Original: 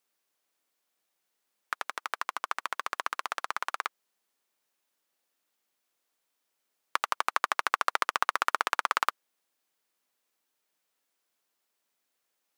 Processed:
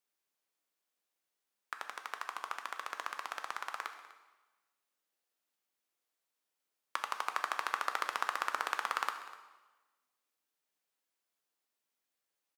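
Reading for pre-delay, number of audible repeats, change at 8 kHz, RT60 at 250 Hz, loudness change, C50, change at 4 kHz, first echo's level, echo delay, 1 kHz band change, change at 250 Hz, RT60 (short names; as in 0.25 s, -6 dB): 5 ms, 1, -7.0 dB, 1.1 s, -7.0 dB, 8.5 dB, -7.0 dB, -18.5 dB, 0.248 s, -7.0 dB, -7.0 dB, 1.2 s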